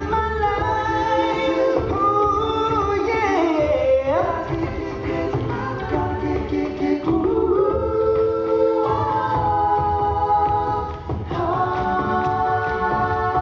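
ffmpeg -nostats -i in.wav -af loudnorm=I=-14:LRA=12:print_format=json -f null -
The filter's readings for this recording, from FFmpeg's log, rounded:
"input_i" : "-20.7",
"input_tp" : "-5.4",
"input_lra" : "2.2",
"input_thresh" : "-30.7",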